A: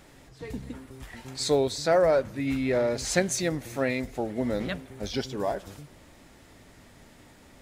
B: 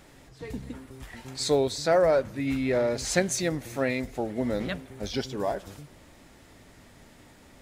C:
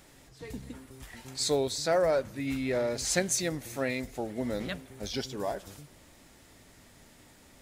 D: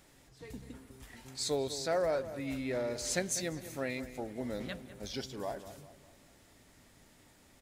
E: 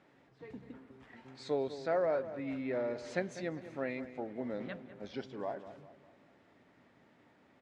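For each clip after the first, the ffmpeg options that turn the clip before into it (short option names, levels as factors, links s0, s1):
-af anull
-af "highshelf=f=4100:g=7.5,volume=0.596"
-filter_complex "[0:a]asplit=2[s0][s1];[s1]adelay=199,lowpass=f=2200:p=1,volume=0.237,asplit=2[s2][s3];[s3]adelay=199,lowpass=f=2200:p=1,volume=0.46,asplit=2[s4][s5];[s5]adelay=199,lowpass=f=2200:p=1,volume=0.46,asplit=2[s6][s7];[s7]adelay=199,lowpass=f=2200:p=1,volume=0.46,asplit=2[s8][s9];[s9]adelay=199,lowpass=f=2200:p=1,volume=0.46[s10];[s0][s2][s4][s6][s8][s10]amix=inputs=6:normalize=0,volume=0.531"
-af "highpass=160,lowpass=2100"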